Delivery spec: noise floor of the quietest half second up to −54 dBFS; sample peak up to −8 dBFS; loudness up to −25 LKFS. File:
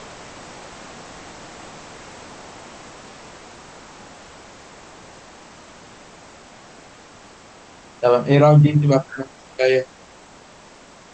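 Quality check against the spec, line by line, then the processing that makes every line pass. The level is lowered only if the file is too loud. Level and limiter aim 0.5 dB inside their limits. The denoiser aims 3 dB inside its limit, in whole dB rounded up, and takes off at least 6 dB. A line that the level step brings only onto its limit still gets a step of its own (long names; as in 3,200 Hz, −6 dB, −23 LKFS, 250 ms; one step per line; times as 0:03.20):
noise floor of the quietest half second −46 dBFS: out of spec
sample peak −4.0 dBFS: out of spec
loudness −16.5 LKFS: out of spec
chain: level −9 dB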